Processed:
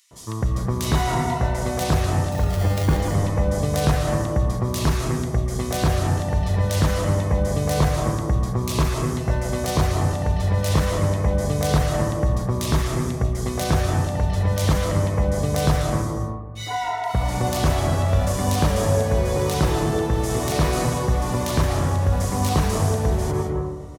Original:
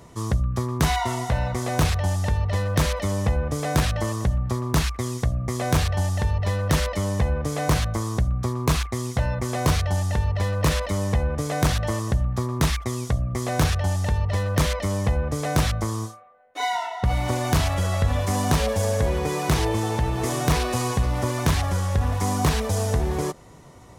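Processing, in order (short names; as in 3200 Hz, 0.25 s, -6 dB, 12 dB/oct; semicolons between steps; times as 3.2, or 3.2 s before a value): 2.32–2.97 sample-rate reducer 1300 Hz, jitter 0%; bands offset in time highs, lows 0.11 s, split 2300 Hz; reverb RT60 1.3 s, pre-delay 0.115 s, DRR 2.5 dB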